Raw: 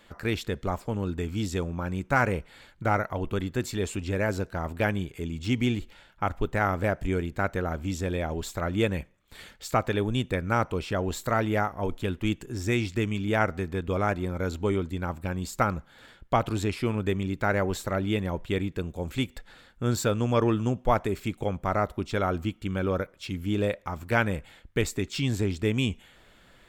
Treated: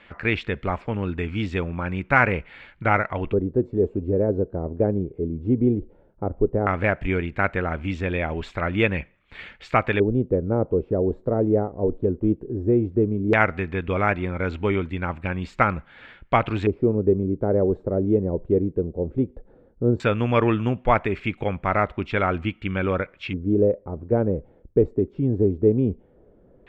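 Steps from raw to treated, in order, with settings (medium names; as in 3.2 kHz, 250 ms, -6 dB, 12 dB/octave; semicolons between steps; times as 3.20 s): Chebyshev shaper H 7 -42 dB, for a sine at -8 dBFS; LFO low-pass square 0.15 Hz 450–2400 Hz; trim +3.5 dB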